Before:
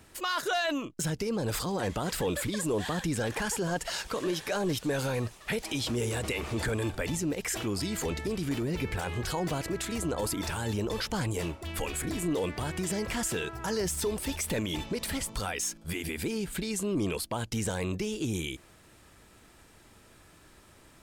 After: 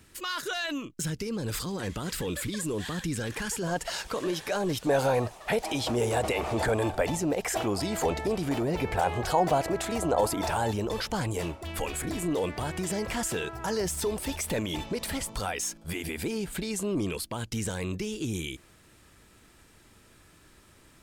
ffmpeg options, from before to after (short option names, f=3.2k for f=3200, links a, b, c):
-af "asetnsamples=n=441:p=0,asendcmd='3.63 equalizer g 2.5;4.87 equalizer g 14;10.71 equalizer g 4;17.01 equalizer g -4',equalizer=f=720:t=o:w=1.1:g=-8.5"